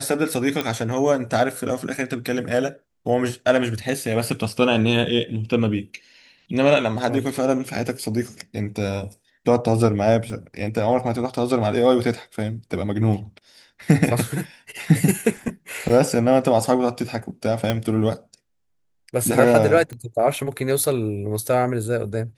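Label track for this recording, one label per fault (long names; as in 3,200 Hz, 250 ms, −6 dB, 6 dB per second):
0.610000	0.610000	click −10 dBFS
10.300000	10.300000	drop-out 2.2 ms
15.890000	15.900000	drop-out 5.7 ms
17.700000	17.700000	click −7 dBFS
19.930000	19.930000	click −22 dBFS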